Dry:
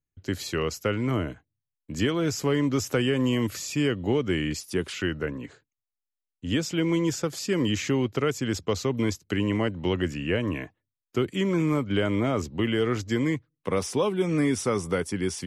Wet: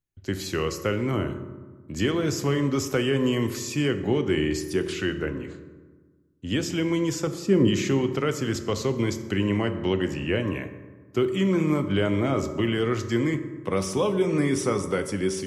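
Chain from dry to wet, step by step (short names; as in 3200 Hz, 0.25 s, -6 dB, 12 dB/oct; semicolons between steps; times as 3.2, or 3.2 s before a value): 7.27–7.68 tilt shelf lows +6.5 dB, about 760 Hz; reverb RT60 1.4 s, pre-delay 3 ms, DRR 7.5 dB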